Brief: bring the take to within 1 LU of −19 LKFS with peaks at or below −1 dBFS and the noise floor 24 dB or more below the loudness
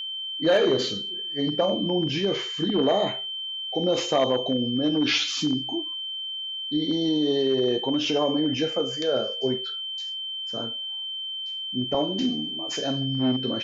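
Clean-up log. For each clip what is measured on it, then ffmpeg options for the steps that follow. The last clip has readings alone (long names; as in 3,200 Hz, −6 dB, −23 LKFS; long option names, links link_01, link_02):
interfering tone 3,100 Hz; level of the tone −30 dBFS; integrated loudness −25.0 LKFS; sample peak −10.0 dBFS; target loudness −19.0 LKFS
→ -af "bandreject=frequency=3100:width=30"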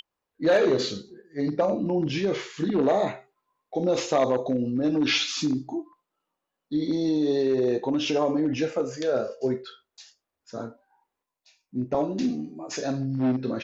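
interfering tone none found; integrated loudness −26.0 LKFS; sample peak −11.0 dBFS; target loudness −19.0 LKFS
→ -af "volume=7dB"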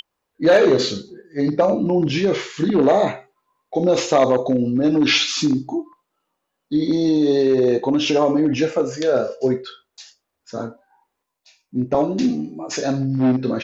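integrated loudness −19.0 LKFS; sample peak −4.0 dBFS; background noise floor −78 dBFS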